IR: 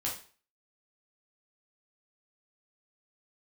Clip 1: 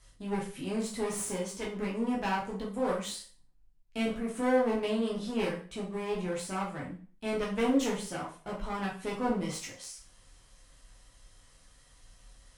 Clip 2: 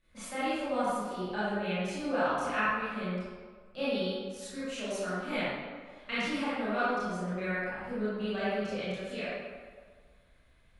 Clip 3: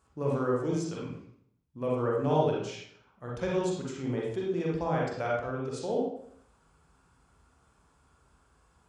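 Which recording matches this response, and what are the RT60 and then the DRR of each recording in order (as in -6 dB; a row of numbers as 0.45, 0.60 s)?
1; 0.40, 1.7, 0.65 s; -4.5, -13.0, -4.5 dB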